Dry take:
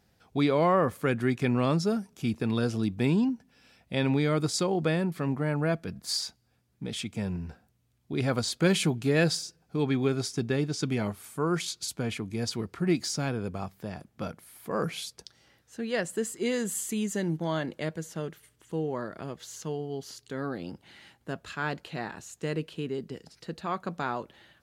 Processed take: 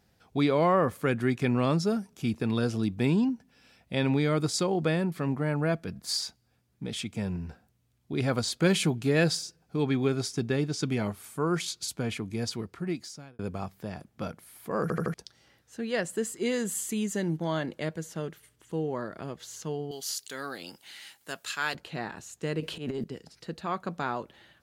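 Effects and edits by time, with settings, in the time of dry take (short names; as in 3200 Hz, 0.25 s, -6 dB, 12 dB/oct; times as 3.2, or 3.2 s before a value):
12.36–13.39 fade out
14.82 stutter in place 0.08 s, 4 plays
19.91–21.75 tilt +4.5 dB/oct
22.6–23.04 transient shaper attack -12 dB, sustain +11 dB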